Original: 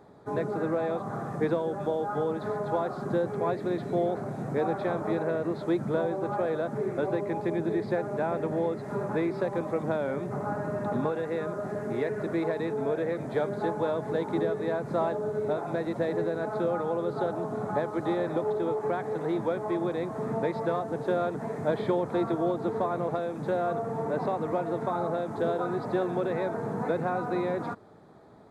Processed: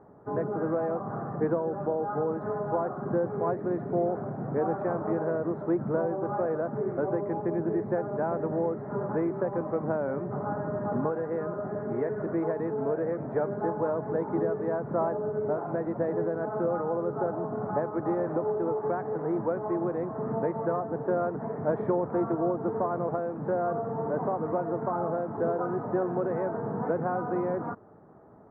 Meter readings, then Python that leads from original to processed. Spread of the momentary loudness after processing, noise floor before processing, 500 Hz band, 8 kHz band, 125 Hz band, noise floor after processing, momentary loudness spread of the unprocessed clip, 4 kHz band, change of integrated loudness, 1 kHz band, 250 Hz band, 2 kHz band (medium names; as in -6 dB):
3 LU, -38 dBFS, 0.0 dB, no reading, 0.0 dB, -38 dBFS, 3 LU, under -25 dB, 0.0 dB, 0.0 dB, 0.0 dB, -4.5 dB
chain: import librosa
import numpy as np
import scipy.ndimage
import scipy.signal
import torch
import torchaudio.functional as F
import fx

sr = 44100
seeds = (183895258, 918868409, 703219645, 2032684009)

y = scipy.signal.sosfilt(scipy.signal.butter(4, 1500.0, 'lowpass', fs=sr, output='sos'), x)